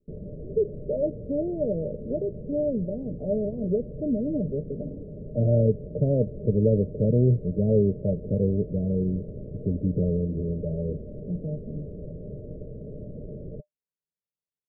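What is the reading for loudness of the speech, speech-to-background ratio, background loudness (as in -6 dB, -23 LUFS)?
-27.0 LUFS, 13.0 dB, -40.0 LUFS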